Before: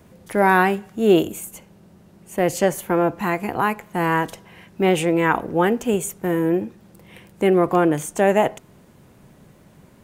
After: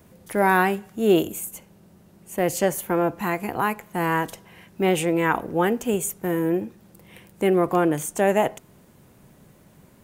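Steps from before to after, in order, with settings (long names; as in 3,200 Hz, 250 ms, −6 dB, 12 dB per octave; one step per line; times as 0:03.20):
high-shelf EQ 9,400 Hz +8.5 dB
level −3 dB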